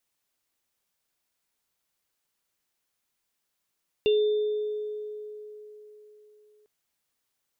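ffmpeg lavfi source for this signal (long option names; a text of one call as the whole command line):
ffmpeg -f lavfi -i "aevalsrc='0.126*pow(10,-3*t/3.83)*sin(2*PI*423*t)+0.0376*pow(10,-3*t/0.2)*sin(2*PI*2770*t)+0.0224*pow(10,-3*t/1.49)*sin(2*PI*3570*t)':duration=2.6:sample_rate=44100" out.wav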